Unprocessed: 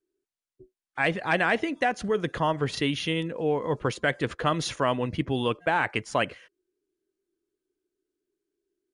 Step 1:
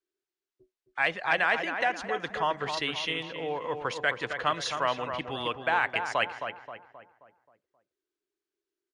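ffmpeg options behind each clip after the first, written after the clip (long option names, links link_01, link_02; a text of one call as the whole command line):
ffmpeg -i in.wav -filter_complex "[0:a]acrossover=split=600 7200:gain=0.2 1 0.158[link_01][link_02][link_03];[link_01][link_02][link_03]amix=inputs=3:normalize=0,asplit=2[link_04][link_05];[link_05]adelay=265,lowpass=frequency=1900:poles=1,volume=-6.5dB,asplit=2[link_06][link_07];[link_07]adelay=265,lowpass=frequency=1900:poles=1,volume=0.48,asplit=2[link_08][link_09];[link_09]adelay=265,lowpass=frequency=1900:poles=1,volume=0.48,asplit=2[link_10][link_11];[link_11]adelay=265,lowpass=frequency=1900:poles=1,volume=0.48,asplit=2[link_12][link_13];[link_13]adelay=265,lowpass=frequency=1900:poles=1,volume=0.48,asplit=2[link_14][link_15];[link_15]adelay=265,lowpass=frequency=1900:poles=1,volume=0.48[link_16];[link_06][link_08][link_10][link_12][link_14][link_16]amix=inputs=6:normalize=0[link_17];[link_04][link_17]amix=inputs=2:normalize=0" out.wav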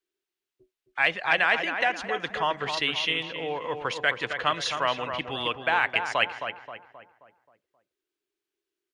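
ffmpeg -i in.wav -af "equalizer=frequency=2800:width_type=o:width=1.1:gain=5,volume=1dB" out.wav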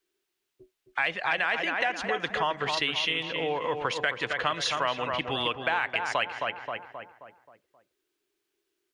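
ffmpeg -i in.wav -filter_complex "[0:a]asplit=2[link_01][link_02];[link_02]alimiter=limit=-13.5dB:level=0:latency=1:release=33,volume=2dB[link_03];[link_01][link_03]amix=inputs=2:normalize=0,acompressor=threshold=-28dB:ratio=2.5" out.wav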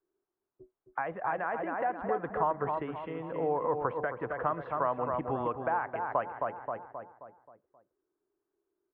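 ffmpeg -i in.wav -af "lowpass=frequency=1200:width=0.5412,lowpass=frequency=1200:width=1.3066" out.wav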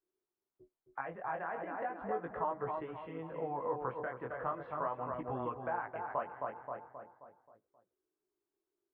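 ffmpeg -i in.wav -af "flanger=delay=16:depth=7.8:speed=0.37,volume=-3.5dB" out.wav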